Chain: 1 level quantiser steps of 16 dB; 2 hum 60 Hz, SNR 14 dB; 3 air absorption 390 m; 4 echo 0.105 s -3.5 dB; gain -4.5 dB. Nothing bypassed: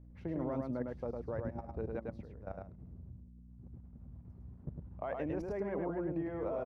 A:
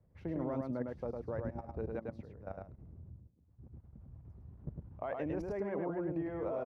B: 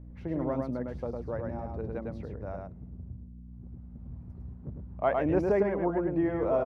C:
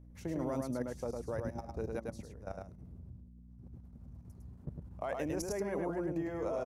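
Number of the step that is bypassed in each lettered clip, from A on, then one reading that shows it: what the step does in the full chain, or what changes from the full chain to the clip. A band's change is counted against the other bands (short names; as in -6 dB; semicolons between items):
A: 2, momentary loudness spread change +2 LU; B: 1, momentary loudness spread change +3 LU; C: 3, 2 kHz band +2.5 dB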